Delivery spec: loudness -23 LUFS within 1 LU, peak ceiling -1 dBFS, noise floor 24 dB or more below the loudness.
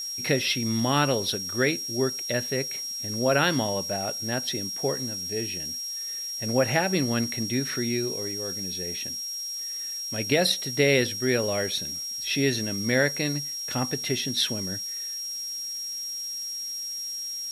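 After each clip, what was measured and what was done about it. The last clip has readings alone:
steady tone 5600 Hz; tone level -31 dBFS; noise floor -34 dBFS; noise floor target -51 dBFS; loudness -26.5 LUFS; peak -9.0 dBFS; loudness target -23.0 LUFS
-> notch 5600 Hz, Q 30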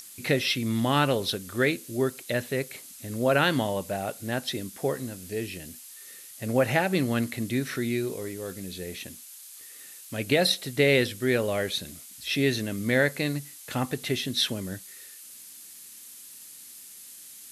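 steady tone none; noise floor -47 dBFS; noise floor target -52 dBFS
-> noise print and reduce 6 dB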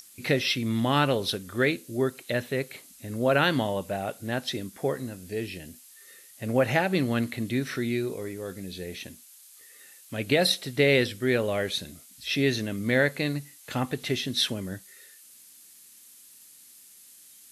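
noise floor -52 dBFS; loudness -27.5 LUFS; peak -9.5 dBFS; loudness target -23.0 LUFS
-> gain +4.5 dB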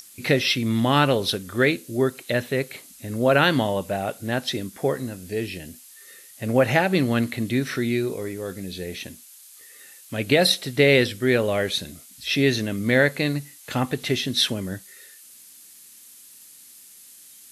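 loudness -23.0 LUFS; peak -5.0 dBFS; noise floor -48 dBFS

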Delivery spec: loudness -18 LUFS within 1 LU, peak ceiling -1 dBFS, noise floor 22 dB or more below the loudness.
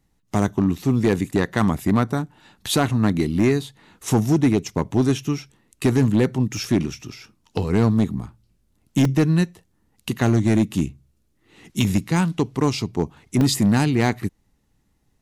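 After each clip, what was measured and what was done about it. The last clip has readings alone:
clipped 1.3%; flat tops at -11.0 dBFS; dropouts 5; longest dropout 2.1 ms; loudness -21.5 LUFS; peak -11.0 dBFS; loudness target -18.0 LUFS
-> clip repair -11 dBFS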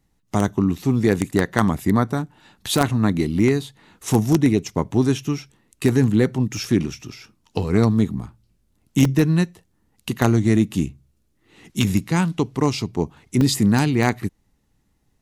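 clipped 0.0%; dropouts 5; longest dropout 2.1 ms
-> interpolate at 3.39/6.57/7.12/9.05/13.41, 2.1 ms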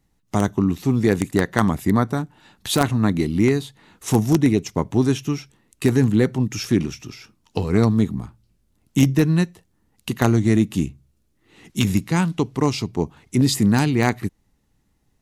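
dropouts 0; loudness -20.5 LUFS; peak -2.0 dBFS; loudness target -18.0 LUFS
-> gain +2.5 dB; limiter -1 dBFS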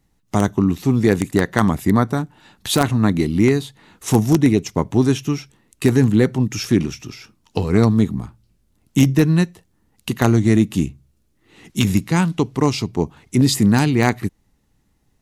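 loudness -18.5 LUFS; peak -1.0 dBFS; noise floor -64 dBFS

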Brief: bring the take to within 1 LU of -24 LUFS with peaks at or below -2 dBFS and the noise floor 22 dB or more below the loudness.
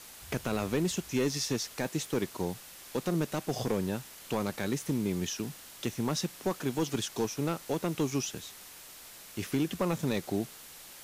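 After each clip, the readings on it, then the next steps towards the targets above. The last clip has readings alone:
clipped 0.8%; flat tops at -21.5 dBFS; noise floor -50 dBFS; noise floor target -55 dBFS; loudness -33.0 LUFS; peak -21.5 dBFS; loudness target -24.0 LUFS
-> clip repair -21.5 dBFS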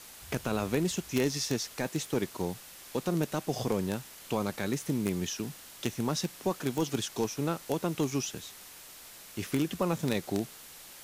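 clipped 0.0%; noise floor -50 dBFS; noise floor target -55 dBFS
-> denoiser 6 dB, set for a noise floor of -50 dBFS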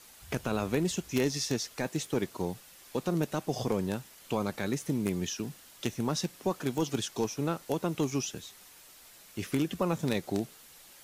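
noise floor -55 dBFS; loudness -33.0 LUFS; peak -12.5 dBFS; loudness target -24.0 LUFS
-> gain +9 dB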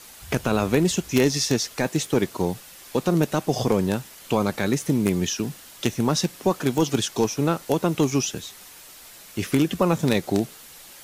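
loudness -24.0 LUFS; peak -3.5 dBFS; noise floor -46 dBFS

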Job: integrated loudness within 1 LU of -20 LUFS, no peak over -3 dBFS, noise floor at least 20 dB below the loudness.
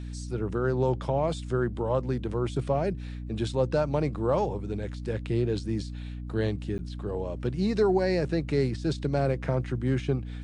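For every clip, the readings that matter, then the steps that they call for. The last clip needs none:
dropouts 1; longest dropout 9.6 ms; hum 60 Hz; harmonics up to 300 Hz; hum level -34 dBFS; loudness -29.0 LUFS; peak -14.0 dBFS; loudness target -20.0 LUFS
-> interpolate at 6.78, 9.6 ms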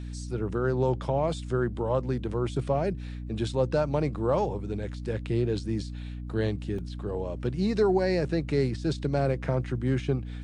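dropouts 0; hum 60 Hz; harmonics up to 300 Hz; hum level -34 dBFS
-> de-hum 60 Hz, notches 5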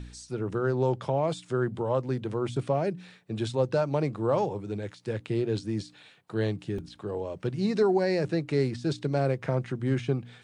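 hum none; loudness -29.5 LUFS; peak -14.0 dBFS; loudness target -20.0 LUFS
-> gain +9.5 dB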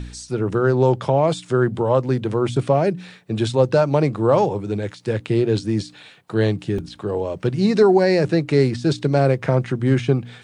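loudness -20.0 LUFS; peak -4.5 dBFS; noise floor -46 dBFS

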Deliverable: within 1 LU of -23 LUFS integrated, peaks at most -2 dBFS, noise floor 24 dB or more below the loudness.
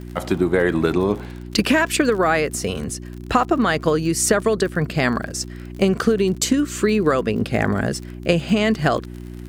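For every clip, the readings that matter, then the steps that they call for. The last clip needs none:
ticks 47/s; hum 60 Hz; harmonics up to 360 Hz; hum level -32 dBFS; loudness -20.0 LUFS; peak -4.0 dBFS; loudness target -23.0 LUFS
-> de-click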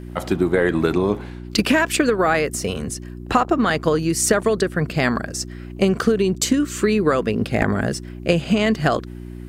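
ticks 0/s; hum 60 Hz; harmonics up to 360 Hz; hum level -32 dBFS
-> de-hum 60 Hz, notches 6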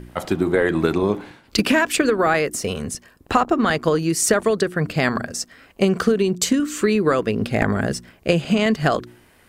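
hum none; loudness -20.5 LUFS; peak -3.5 dBFS; loudness target -23.0 LUFS
-> gain -2.5 dB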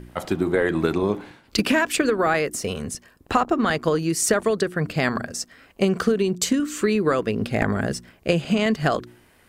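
loudness -23.0 LUFS; peak -6.0 dBFS; noise floor -56 dBFS

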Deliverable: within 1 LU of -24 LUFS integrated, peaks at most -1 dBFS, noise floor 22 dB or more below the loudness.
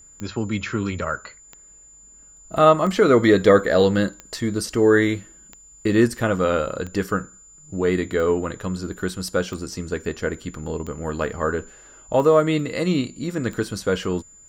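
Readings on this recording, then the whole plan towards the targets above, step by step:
clicks 11; steady tone 7100 Hz; tone level -46 dBFS; loudness -21.5 LUFS; peak -2.0 dBFS; loudness target -24.0 LUFS
-> de-click; notch 7100 Hz, Q 30; gain -2.5 dB

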